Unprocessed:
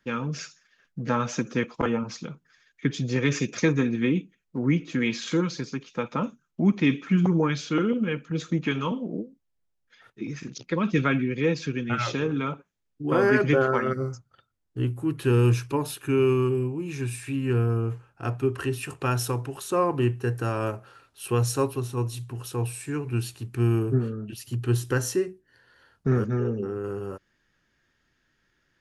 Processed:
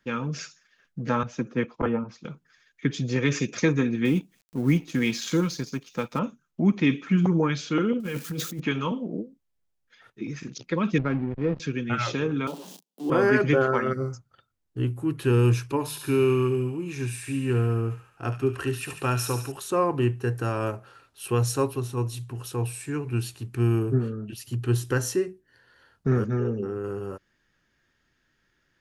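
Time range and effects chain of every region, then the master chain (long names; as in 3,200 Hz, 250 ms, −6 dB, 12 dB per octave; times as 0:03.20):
0:01.23–0:02.25: low-pass filter 1,600 Hz 6 dB per octave + multiband upward and downward expander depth 100%
0:04.05–0:06.19: mu-law and A-law mismatch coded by A + bass and treble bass +3 dB, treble +7 dB + upward compression, threshold −39 dBFS
0:08.00–0:08.60: spike at every zero crossing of −33 dBFS + compressor whose output falls as the input rises −31 dBFS
0:10.98–0:11.60: slack as between gear wheels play −24.5 dBFS + head-to-tape spacing loss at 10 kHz 39 dB
0:12.47–0:13.10: converter with a step at zero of −35.5 dBFS + Butterworth high-pass 170 Hz 72 dB per octave + flat-topped bell 1,700 Hz −14.5 dB 1.2 octaves
0:15.72–0:19.52: mains-hum notches 50/100/150/200 Hz + delay with a high-pass on its return 71 ms, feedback 64%, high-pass 1,900 Hz, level −6 dB
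whole clip: no processing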